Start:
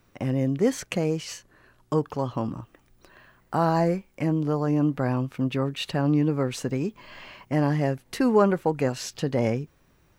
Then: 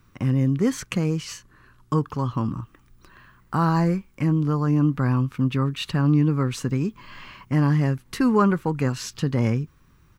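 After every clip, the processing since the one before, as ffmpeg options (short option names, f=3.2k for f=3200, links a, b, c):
-af "firequalizer=gain_entry='entry(110,0);entry(650,-16);entry(1100,-1);entry(1800,-6)':delay=0.05:min_phase=1,volume=7dB"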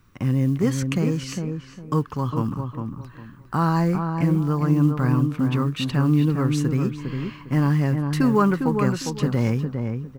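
-filter_complex "[0:a]acrusher=bits=9:mode=log:mix=0:aa=0.000001,asplit=2[a][b];[b]adelay=405,lowpass=f=1.5k:p=1,volume=-5dB,asplit=2[c][d];[d]adelay=405,lowpass=f=1.5k:p=1,volume=0.27,asplit=2[e][f];[f]adelay=405,lowpass=f=1.5k:p=1,volume=0.27,asplit=2[g][h];[h]adelay=405,lowpass=f=1.5k:p=1,volume=0.27[i];[c][e][g][i]amix=inputs=4:normalize=0[j];[a][j]amix=inputs=2:normalize=0"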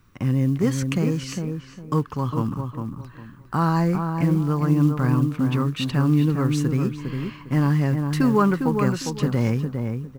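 -af "acrusher=bits=9:mode=log:mix=0:aa=0.000001"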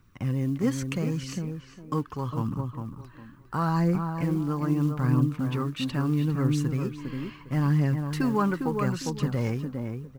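-af "aphaser=in_gain=1:out_gain=1:delay=3.9:decay=0.33:speed=0.77:type=triangular,volume=-5.5dB"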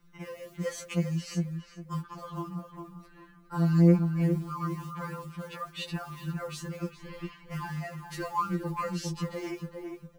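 -filter_complex "[0:a]acrossover=split=140|970|3500[a][b][c][d];[a]acompressor=threshold=-42dB:ratio=6[e];[e][b][c][d]amix=inputs=4:normalize=0,afftfilt=real='re*2.83*eq(mod(b,8),0)':imag='im*2.83*eq(mod(b,8),0)':win_size=2048:overlap=0.75"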